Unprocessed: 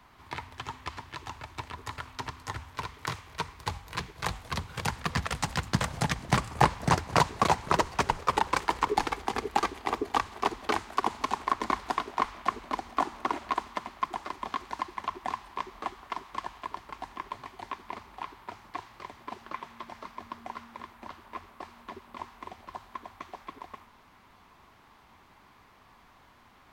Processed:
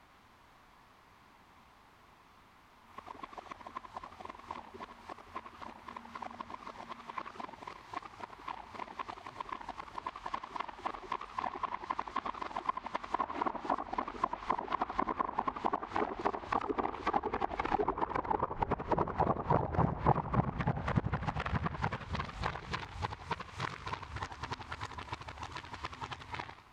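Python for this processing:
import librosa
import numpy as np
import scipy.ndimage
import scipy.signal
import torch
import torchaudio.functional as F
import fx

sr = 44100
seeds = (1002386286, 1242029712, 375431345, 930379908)

y = x[::-1].copy()
y = fx.env_lowpass_down(y, sr, base_hz=800.0, full_db=-23.5)
y = fx.echo_warbled(y, sr, ms=89, feedback_pct=36, rate_hz=2.8, cents=211, wet_db=-8.0)
y = F.gain(torch.from_numpy(y), -3.5).numpy()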